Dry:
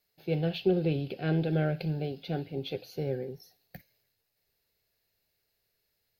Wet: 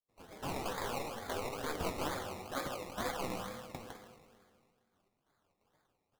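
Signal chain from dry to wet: local Wiener filter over 9 samples; trance gate ".xx..xxx.xxx.." 174 bpm -24 dB; in parallel at +1 dB: peak limiter -27 dBFS, peak gain reduction 12 dB; 0.50–1.79 s: on the sum: compression, threshold -28 dBFS, peak gain reduction 9.5 dB; 2.55–3.01 s: high-pass 310 Hz 24 dB/octave; saturation -33 dBFS, distortion -7 dB; spectral gate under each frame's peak -15 dB weak; delay 156 ms -7 dB; on a send at -2 dB: reverberation RT60 1.9 s, pre-delay 3 ms; on the sum: decimation with a swept rate 22×, swing 60% 2.2 Hz; flange 1.9 Hz, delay 6 ms, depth 5.6 ms, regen +54%; trim +12.5 dB

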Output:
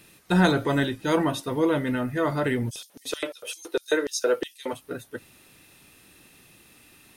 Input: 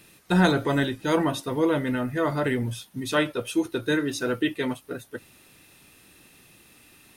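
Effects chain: 2.69–4.72 s: LFO high-pass square 7.8 Hz -> 2 Hz 490–5600 Hz

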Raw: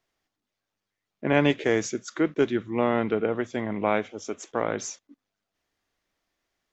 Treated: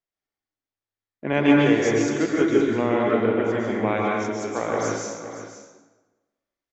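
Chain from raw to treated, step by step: gate -51 dBFS, range -15 dB; delay 519 ms -12 dB; plate-style reverb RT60 1.2 s, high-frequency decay 0.7×, pre-delay 115 ms, DRR -3.5 dB; trim -1.5 dB

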